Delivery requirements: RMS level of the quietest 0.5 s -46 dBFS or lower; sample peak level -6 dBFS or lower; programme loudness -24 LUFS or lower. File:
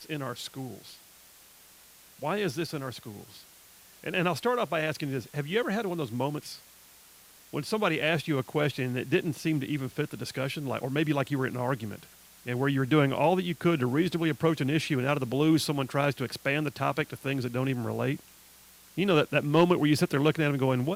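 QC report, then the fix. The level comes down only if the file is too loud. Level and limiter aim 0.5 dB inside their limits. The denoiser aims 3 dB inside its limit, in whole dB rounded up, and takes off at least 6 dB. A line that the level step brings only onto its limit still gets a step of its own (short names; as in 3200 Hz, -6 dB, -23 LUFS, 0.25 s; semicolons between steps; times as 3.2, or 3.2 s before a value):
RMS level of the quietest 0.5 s -55 dBFS: OK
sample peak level -11.0 dBFS: OK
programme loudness -28.5 LUFS: OK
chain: none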